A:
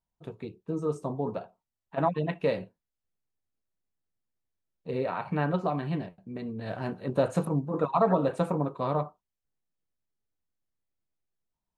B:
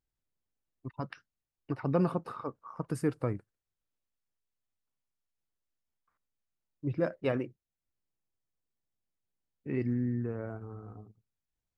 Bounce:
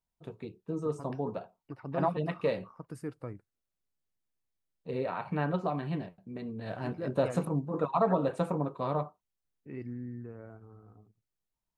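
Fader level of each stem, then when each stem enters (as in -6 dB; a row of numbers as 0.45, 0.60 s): -3.0, -9.0 dB; 0.00, 0.00 s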